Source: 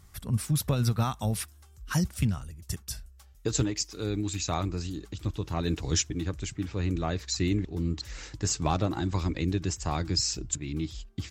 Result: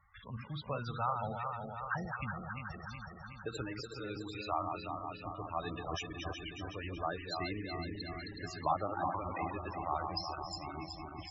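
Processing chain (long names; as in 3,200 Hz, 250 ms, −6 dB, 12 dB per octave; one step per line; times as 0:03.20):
feedback delay that plays each chunk backwards 185 ms, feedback 82%, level −5 dB
three-way crossover with the lows and the highs turned down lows −17 dB, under 590 Hz, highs −23 dB, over 3,800 Hz
floating-point word with a short mantissa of 2 bits
spectral peaks only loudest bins 32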